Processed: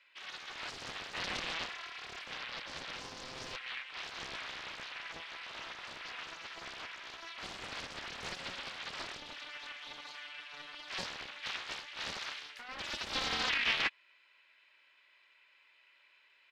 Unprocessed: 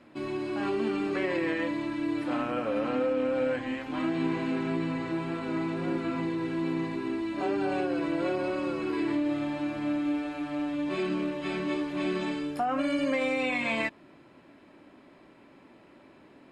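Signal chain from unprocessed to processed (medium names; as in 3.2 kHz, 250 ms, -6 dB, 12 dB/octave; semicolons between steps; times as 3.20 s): ladder band-pass 3.1 kHz, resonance 30%; comb 2 ms, depth 42%; loudspeaker Doppler distortion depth 0.77 ms; trim +9.5 dB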